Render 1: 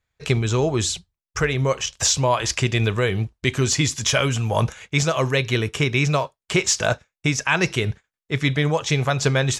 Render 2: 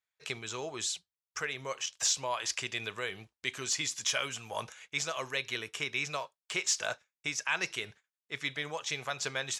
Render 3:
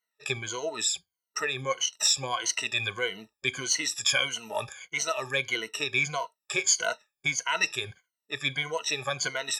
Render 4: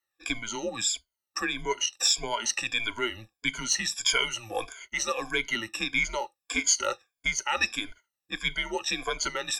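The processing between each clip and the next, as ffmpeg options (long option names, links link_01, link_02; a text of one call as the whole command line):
ffmpeg -i in.wav -af "highpass=frequency=1200:poles=1,volume=-9dB" out.wav
ffmpeg -i in.wav -af "afftfilt=real='re*pow(10,23/40*sin(2*PI*(1.9*log(max(b,1)*sr/1024/100)/log(2)-(-1.6)*(pts-256)/sr)))':imag='im*pow(10,23/40*sin(2*PI*(1.9*log(max(b,1)*sr/1024/100)/log(2)-(-1.6)*(pts-256)/sr)))':win_size=1024:overlap=0.75" out.wav
ffmpeg -i in.wav -af "afreqshift=-110" out.wav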